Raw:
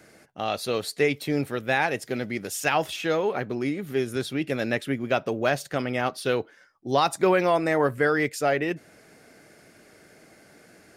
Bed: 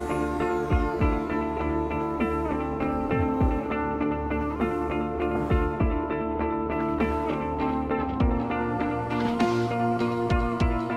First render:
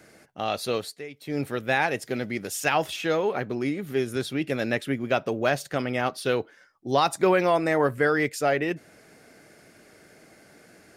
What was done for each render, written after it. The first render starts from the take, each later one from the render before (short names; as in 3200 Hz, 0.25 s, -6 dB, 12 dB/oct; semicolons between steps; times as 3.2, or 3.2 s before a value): 0.74–1.46 dip -16.5 dB, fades 0.28 s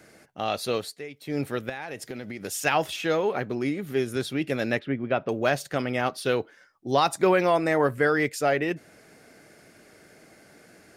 1.69–2.44 compressor 8:1, threshold -31 dBFS; 4.79–5.29 air absorption 320 m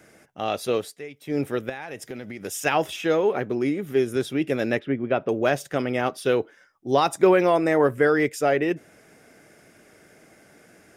notch 4300 Hz, Q 5.6; dynamic EQ 380 Hz, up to +5 dB, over -36 dBFS, Q 1.2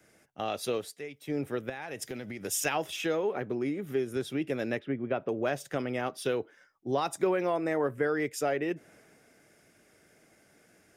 compressor 2.5:1, threshold -31 dBFS, peak gain reduction 12.5 dB; three-band expander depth 40%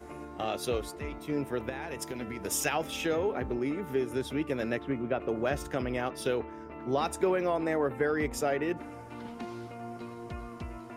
add bed -16.5 dB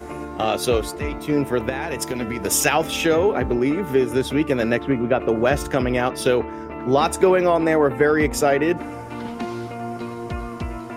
gain +11.5 dB